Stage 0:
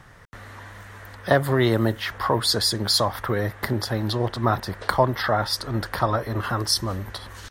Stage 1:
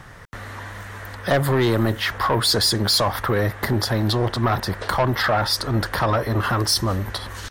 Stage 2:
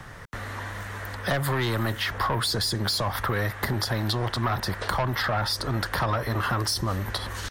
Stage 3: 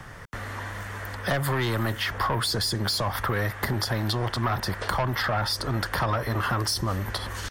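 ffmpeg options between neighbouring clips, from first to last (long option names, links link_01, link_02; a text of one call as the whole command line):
ffmpeg -i in.wav -filter_complex "[0:a]asplit=2[link_01][link_02];[link_02]alimiter=limit=-14.5dB:level=0:latency=1:release=39,volume=1dB[link_03];[link_01][link_03]amix=inputs=2:normalize=0,asoftclip=type=tanh:threshold=-12.5dB" out.wav
ffmpeg -i in.wav -filter_complex "[0:a]acrossover=split=200|770[link_01][link_02][link_03];[link_01]acompressor=threshold=-28dB:ratio=4[link_04];[link_02]acompressor=threshold=-34dB:ratio=4[link_05];[link_03]acompressor=threshold=-26dB:ratio=4[link_06];[link_04][link_05][link_06]amix=inputs=3:normalize=0" out.wav
ffmpeg -i in.wav -af "bandreject=frequency=3900:width=16" out.wav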